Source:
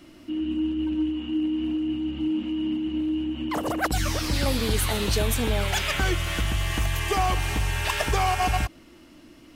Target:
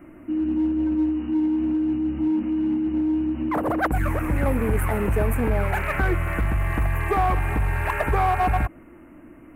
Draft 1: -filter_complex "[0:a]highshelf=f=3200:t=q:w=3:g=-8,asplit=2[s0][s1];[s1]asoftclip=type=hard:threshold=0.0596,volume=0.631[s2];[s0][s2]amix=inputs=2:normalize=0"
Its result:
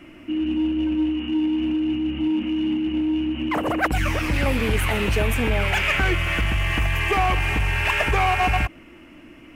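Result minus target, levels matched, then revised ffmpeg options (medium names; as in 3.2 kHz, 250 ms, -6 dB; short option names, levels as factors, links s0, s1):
4 kHz band +16.0 dB
-filter_complex "[0:a]asuperstop=centerf=4200:order=4:qfactor=0.5,highshelf=f=3200:t=q:w=3:g=-8,asplit=2[s0][s1];[s1]asoftclip=type=hard:threshold=0.0596,volume=0.631[s2];[s0][s2]amix=inputs=2:normalize=0"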